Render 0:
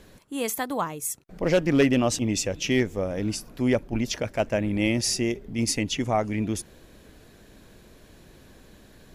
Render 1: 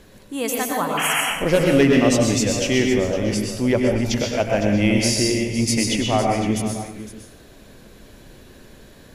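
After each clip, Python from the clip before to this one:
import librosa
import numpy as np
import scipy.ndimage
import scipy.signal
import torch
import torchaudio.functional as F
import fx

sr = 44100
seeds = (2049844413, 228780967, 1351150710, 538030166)

y = fx.spec_paint(x, sr, seeds[0], shape='noise', start_s=0.97, length_s=0.24, low_hz=650.0, high_hz=3300.0, level_db=-26.0)
y = fx.echo_multitap(y, sr, ms=(97, 298, 509), db=(-10.0, -19.0, -13.0))
y = fx.rev_plate(y, sr, seeds[1], rt60_s=0.52, hf_ratio=0.95, predelay_ms=105, drr_db=1.5)
y = y * 10.0 ** (3.0 / 20.0)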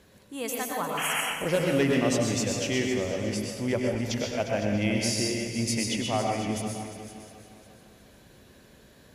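y = scipy.signal.sosfilt(scipy.signal.butter(2, 60.0, 'highpass', fs=sr, output='sos'), x)
y = fx.peak_eq(y, sr, hz=300.0, db=-2.5, octaves=0.95)
y = fx.echo_feedback(y, sr, ms=354, feedback_pct=49, wet_db=-13.0)
y = y * 10.0 ** (-7.5 / 20.0)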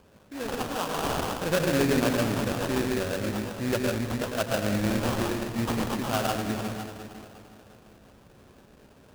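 y = fx.sample_hold(x, sr, seeds[2], rate_hz=2100.0, jitter_pct=20)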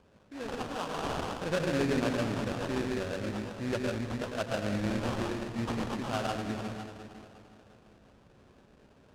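y = fx.air_absorb(x, sr, metres=56.0)
y = y * 10.0 ** (-5.0 / 20.0)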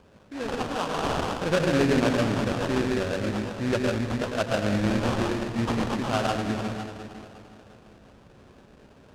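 y = fx.doppler_dist(x, sr, depth_ms=0.13)
y = y * 10.0 ** (7.0 / 20.0)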